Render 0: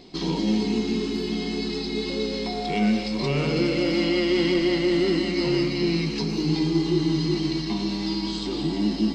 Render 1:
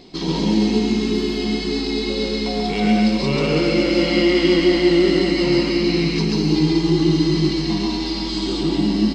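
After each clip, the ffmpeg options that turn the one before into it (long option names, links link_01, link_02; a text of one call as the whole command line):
ffmpeg -i in.wav -af "aecho=1:1:137|198.3:0.891|0.355,volume=3dB" out.wav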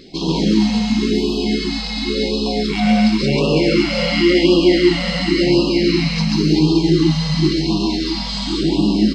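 ffmpeg -i in.wav -af "afftfilt=real='re*(1-between(b*sr/1024,320*pow(1800/320,0.5+0.5*sin(2*PI*0.93*pts/sr))/1.41,320*pow(1800/320,0.5+0.5*sin(2*PI*0.93*pts/sr))*1.41))':imag='im*(1-between(b*sr/1024,320*pow(1800/320,0.5+0.5*sin(2*PI*0.93*pts/sr))/1.41,320*pow(1800/320,0.5+0.5*sin(2*PI*0.93*pts/sr))*1.41))':win_size=1024:overlap=0.75,volume=3dB" out.wav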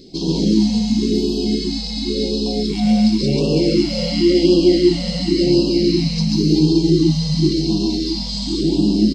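ffmpeg -i in.wav -af "firequalizer=gain_entry='entry(360,0);entry(1300,-18);entry(4600,1)':delay=0.05:min_phase=1" out.wav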